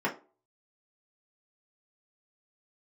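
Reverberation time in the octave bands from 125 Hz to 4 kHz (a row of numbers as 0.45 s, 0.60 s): 0.25 s, 0.35 s, 0.40 s, 0.35 s, 0.25 s, 0.20 s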